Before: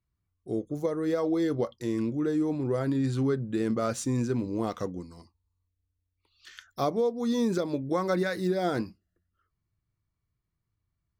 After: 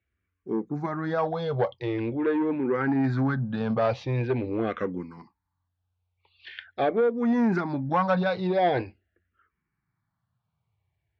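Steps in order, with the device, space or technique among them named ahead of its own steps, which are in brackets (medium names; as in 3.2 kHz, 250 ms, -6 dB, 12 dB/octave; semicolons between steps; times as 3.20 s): barber-pole phaser into a guitar amplifier (barber-pole phaser -0.44 Hz; saturation -24 dBFS, distortion -18 dB; cabinet simulation 84–3600 Hz, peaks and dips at 310 Hz -4 dB, 820 Hz +8 dB, 1.6 kHz +7 dB, 2.3 kHz +5 dB); trim +7.5 dB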